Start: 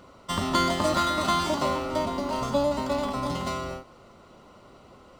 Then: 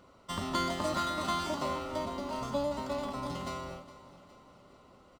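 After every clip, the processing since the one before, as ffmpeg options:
-af "aecho=1:1:412|824|1236|1648|2060:0.141|0.0749|0.0397|0.021|0.0111,volume=0.398"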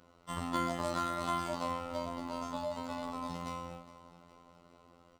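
-af "afftfilt=real='hypot(re,im)*cos(PI*b)':imag='0':win_size=2048:overlap=0.75"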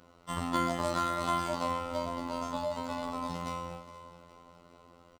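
-af "aecho=1:1:474:0.126,volume=1.5"

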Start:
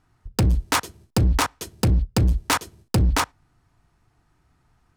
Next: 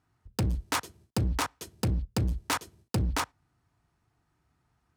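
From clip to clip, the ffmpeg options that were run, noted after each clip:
-af "highpass=56,volume=0.398"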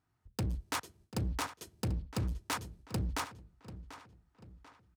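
-filter_complex "[0:a]asplit=2[s0][s1];[s1]adelay=740,lowpass=f=4900:p=1,volume=0.211,asplit=2[s2][s3];[s3]adelay=740,lowpass=f=4900:p=1,volume=0.44,asplit=2[s4][s5];[s5]adelay=740,lowpass=f=4900:p=1,volume=0.44,asplit=2[s6][s7];[s7]adelay=740,lowpass=f=4900:p=1,volume=0.44[s8];[s0][s2][s4][s6][s8]amix=inputs=5:normalize=0,volume=0.473"

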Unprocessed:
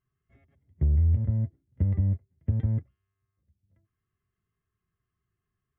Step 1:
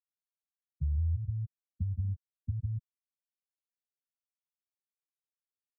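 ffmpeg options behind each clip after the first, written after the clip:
-af "afftfilt=real='re*gte(hypot(re,im),0.224)':imag='im*gte(hypot(re,im),0.224)':win_size=1024:overlap=0.75,volume=0.398"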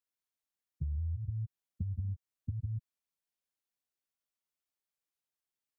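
-af "acompressor=threshold=0.0178:ratio=6,volume=1.26"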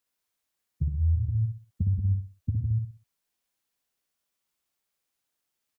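-af "aecho=1:1:62|124|186|248:0.562|0.169|0.0506|0.0152,volume=2.66"

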